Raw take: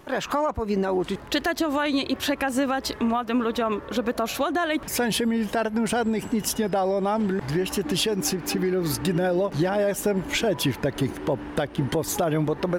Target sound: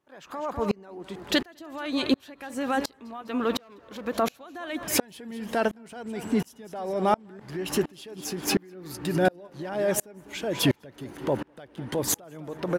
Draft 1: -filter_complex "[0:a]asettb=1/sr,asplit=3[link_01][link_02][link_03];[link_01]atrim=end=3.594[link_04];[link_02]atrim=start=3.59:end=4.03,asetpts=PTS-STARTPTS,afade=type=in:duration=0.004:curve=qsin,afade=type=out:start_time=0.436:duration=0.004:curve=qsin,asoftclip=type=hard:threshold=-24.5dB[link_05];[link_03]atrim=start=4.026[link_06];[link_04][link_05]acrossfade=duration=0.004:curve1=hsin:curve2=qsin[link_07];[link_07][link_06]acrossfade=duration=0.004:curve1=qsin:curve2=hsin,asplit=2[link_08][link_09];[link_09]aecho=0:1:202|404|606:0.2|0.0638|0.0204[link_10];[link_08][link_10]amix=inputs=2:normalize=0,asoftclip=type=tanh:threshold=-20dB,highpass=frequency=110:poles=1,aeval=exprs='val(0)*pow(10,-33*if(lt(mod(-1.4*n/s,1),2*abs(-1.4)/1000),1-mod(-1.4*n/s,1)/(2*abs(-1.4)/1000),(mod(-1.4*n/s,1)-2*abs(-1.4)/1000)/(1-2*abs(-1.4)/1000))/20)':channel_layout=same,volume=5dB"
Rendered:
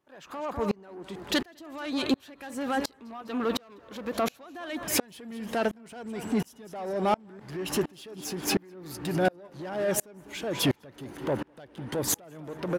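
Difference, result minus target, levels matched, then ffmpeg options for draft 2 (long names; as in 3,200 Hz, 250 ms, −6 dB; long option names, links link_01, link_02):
soft clipping: distortion +19 dB
-filter_complex "[0:a]asettb=1/sr,asplit=3[link_01][link_02][link_03];[link_01]atrim=end=3.594[link_04];[link_02]atrim=start=3.59:end=4.03,asetpts=PTS-STARTPTS,afade=type=in:duration=0.004:curve=qsin,afade=type=out:start_time=0.436:duration=0.004:curve=qsin,asoftclip=type=hard:threshold=-24.5dB[link_05];[link_03]atrim=start=4.026[link_06];[link_04][link_05]acrossfade=duration=0.004:curve1=hsin:curve2=qsin[link_07];[link_07][link_06]acrossfade=duration=0.004:curve1=qsin:curve2=hsin,asplit=2[link_08][link_09];[link_09]aecho=0:1:202|404|606:0.2|0.0638|0.0204[link_10];[link_08][link_10]amix=inputs=2:normalize=0,asoftclip=type=tanh:threshold=-8.5dB,highpass=frequency=110:poles=1,aeval=exprs='val(0)*pow(10,-33*if(lt(mod(-1.4*n/s,1),2*abs(-1.4)/1000),1-mod(-1.4*n/s,1)/(2*abs(-1.4)/1000),(mod(-1.4*n/s,1)-2*abs(-1.4)/1000)/(1-2*abs(-1.4)/1000))/20)':channel_layout=same,volume=5dB"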